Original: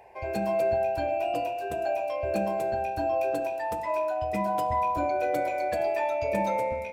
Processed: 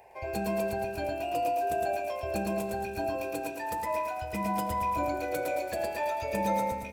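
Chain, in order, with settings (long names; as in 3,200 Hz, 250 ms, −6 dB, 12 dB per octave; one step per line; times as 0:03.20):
high-shelf EQ 6,000 Hz +9.5 dB
repeating echo 111 ms, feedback 47%, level −3 dB
level −3 dB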